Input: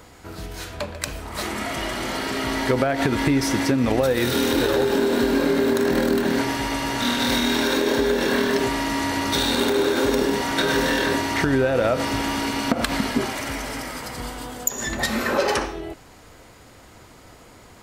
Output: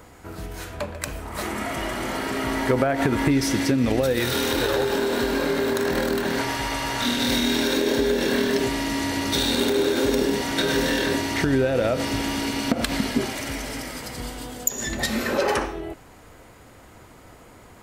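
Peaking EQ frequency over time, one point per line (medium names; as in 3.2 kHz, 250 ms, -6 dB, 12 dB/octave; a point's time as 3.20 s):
peaking EQ -6 dB 1.3 oct
4.3 kHz
from 3.31 s 980 Hz
from 4.20 s 260 Hz
from 7.06 s 1.1 kHz
from 15.41 s 4.8 kHz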